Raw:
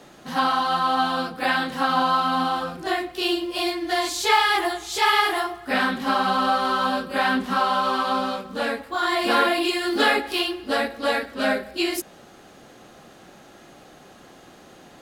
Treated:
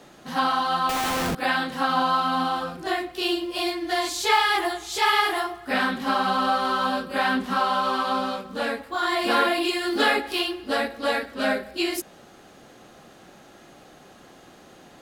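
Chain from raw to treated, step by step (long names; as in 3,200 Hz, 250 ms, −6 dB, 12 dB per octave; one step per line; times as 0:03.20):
0:00.89–0:01.35: comparator with hysteresis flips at −35.5 dBFS
level −1.5 dB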